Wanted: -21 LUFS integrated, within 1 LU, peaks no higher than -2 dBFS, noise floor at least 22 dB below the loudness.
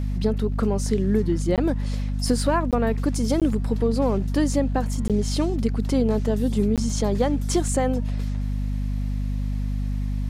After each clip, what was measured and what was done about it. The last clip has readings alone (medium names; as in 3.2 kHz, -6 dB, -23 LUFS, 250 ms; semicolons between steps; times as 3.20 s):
dropouts 5; longest dropout 17 ms; hum 50 Hz; highest harmonic 250 Hz; hum level -23 dBFS; loudness -24.0 LUFS; peak level -7.5 dBFS; loudness target -21.0 LUFS
-> interpolate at 1.56/2.71/3.40/5.08/6.76 s, 17 ms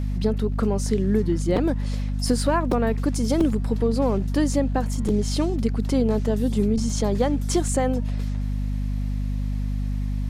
dropouts 0; hum 50 Hz; highest harmonic 250 Hz; hum level -23 dBFS
-> de-hum 50 Hz, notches 5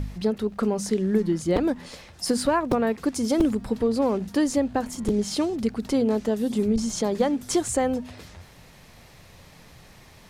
hum not found; loudness -25.0 LUFS; peak level -8.5 dBFS; loudness target -21.0 LUFS
-> trim +4 dB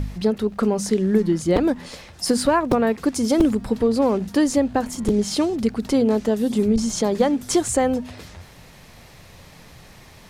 loudness -21.0 LUFS; peak level -4.5 dBFS; noise floor -47 dBFS